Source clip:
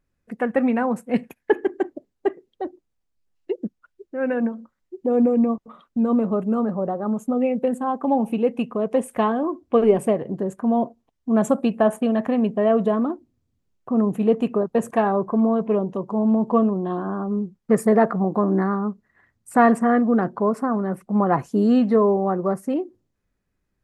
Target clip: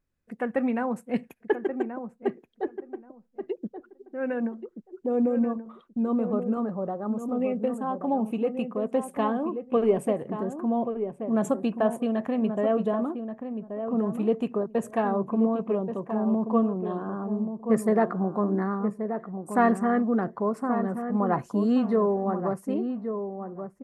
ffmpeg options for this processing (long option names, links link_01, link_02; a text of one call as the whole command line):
ffmpeg -i in.wav -filter_complex "[0:a]asplit=2[link_01][link_02];[link_02]adelay=1130,lowpass=frequency=1200:poles=1,volume=-7.5dB,asplit=2[link_03][link_04];[link_04]adelay=1130,lowpass=frequency=1200:poles=1,volume=0.17,asplit=2[link_05][link_06];[link_06]adelay=1130,lowpass=frequency=1200:poles=1,volume=0.17[link_07];[link_01][link_03][link_05][link_07]amix=inputs=4:normalize=0,volume=-6dB" out.wav